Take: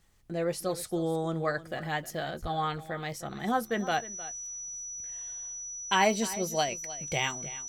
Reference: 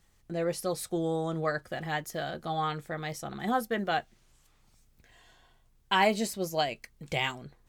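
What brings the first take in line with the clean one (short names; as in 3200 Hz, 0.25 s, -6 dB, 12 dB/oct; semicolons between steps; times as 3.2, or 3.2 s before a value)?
notch 5900 Hz, Q 30; 2.41–2.53 HPF 140 Hz 24 dB/oct; inverse comb 0.309 s -16 dB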